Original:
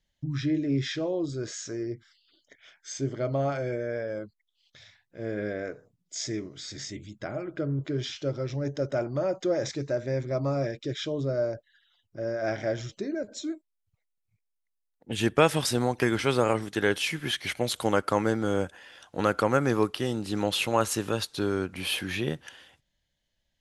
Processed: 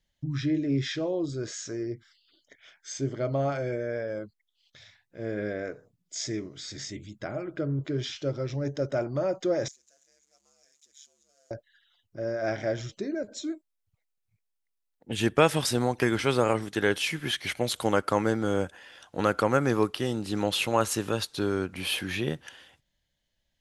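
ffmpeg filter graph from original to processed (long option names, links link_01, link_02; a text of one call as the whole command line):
ffmpeg -i in.wav -filter_complex "[0:a]asettb=1/sr,asplit=3[link_01][link_02][link_03];[link_01]atrim=end=9.684[link_04];[link_02]atrim=start=9.68:end=11.51,asetpts=PTS-STARTPTS,afade=type=in:duration=0.004:curve=qsin,afade=type=out:start_time=1.826:duration=0.004:curve=qsin,aeval=exprs='val(0)+0.5*0.01*sgn(val(0))':channel_layout=same,bandpass=frequency=6800:width_type=q:width=7.8,aeval=exprs='val(0)*sin(2*PI*72*n/s)':channel_layout=same[link_05];[link_03]atrim=start=11.506[link_06];[link_04][link_05]acrossfade=duration=0.004:curve1=hsin:curve2=qsin[link_07];[link_07][link_06]acrossfade=duration=0.004:curve1=qsin:curve2=hsin" out.wav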